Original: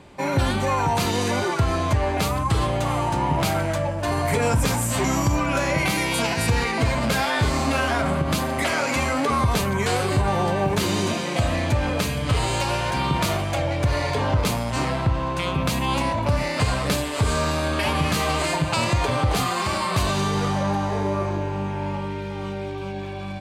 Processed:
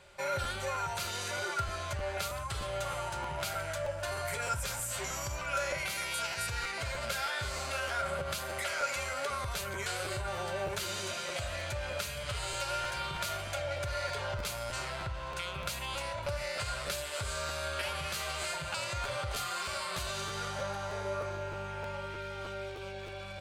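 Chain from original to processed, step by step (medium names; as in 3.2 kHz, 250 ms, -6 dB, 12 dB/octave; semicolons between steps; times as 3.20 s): amplifier tone stack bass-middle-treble 10-0-10; compression 2:1, threshold -36 dBFS, peak gain reduction 7 dB; small resonant body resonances 380/560/1400 Hz, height 15 dB, ringing for 50 ms; crackling interface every 0.31 s, samples 512, repeat, from 0.43 s; trim -2.5 dB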